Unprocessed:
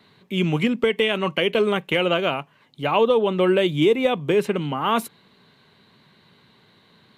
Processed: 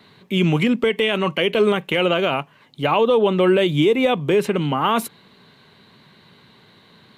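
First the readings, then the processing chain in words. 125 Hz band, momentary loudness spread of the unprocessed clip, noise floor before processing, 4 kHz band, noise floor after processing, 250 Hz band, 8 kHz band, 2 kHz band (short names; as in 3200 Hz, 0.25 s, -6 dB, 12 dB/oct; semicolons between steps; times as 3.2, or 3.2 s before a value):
+4.0 dB, 7 LU, -58 dBFS, +2.0 dB, -53 dBFS, +3.0 dB, n/a, +2.0 dB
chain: limiter -13 dBFS, peak gain reduction 5.5 dB; gain +5 dB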